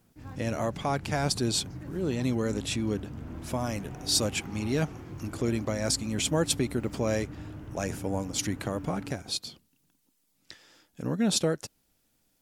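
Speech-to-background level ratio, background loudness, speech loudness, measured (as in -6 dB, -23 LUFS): 12.0 dB, -42.0 LUFS, -30.0 LUFS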